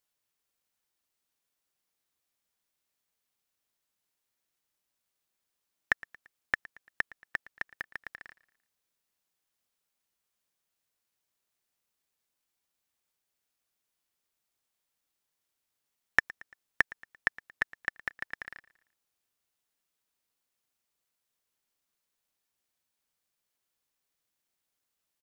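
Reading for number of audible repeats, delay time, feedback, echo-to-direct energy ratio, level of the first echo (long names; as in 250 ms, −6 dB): 3, 114 ms, 47%, −20.0 dB, −21.0 dB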